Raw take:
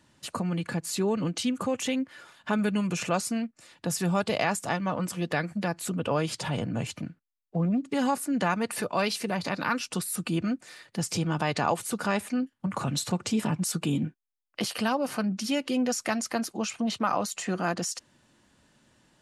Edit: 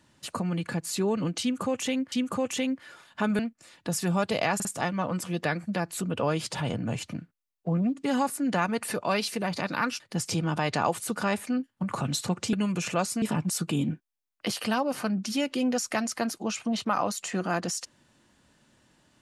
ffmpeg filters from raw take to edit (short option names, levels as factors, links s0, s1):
-filter_complex "[0:a]asplit=8[s0][s1][s2][s3][s4][s5][s6][s7];[s0]atrim=end=2.122[s8];[s1]atrim=start=1.408:end=2.682[s9];[s2]atrim=start=3.368:end=4.582[s10];[s3]atrim=start=4.528:end=4.582[s11];[s4]atrim=start=4.528:end=9.882[s12];[s5]atrim=start=10.828:end=13.362[s13];[s6]atrim=start=2.678:end=3.372[s14];[s7]atrim=start=13.358[s15];[s8][s9]acrossfade=d=0.004:c1=hsin:c2=hsin[s16];[s16][s10]acrossfade=d=0.004:c1=hsin:c2=hsin[s17];[s17][s11]acrossfade=d=0.004:c1=hsin:c2=hsin[s18];[s18][s12]acrossfade=d=0.004:c1=hsin:c2=hsin[s19];[s19][s13]acrossfade=d=0.004:c1=hsin:c2=hsin[s20];[s20][s14]acrossfade=d=0.004:c1=hsin:c2=hsin[s21];[s21][s15]acrossfade=d=0.004:c1=hsin:c2=hsin"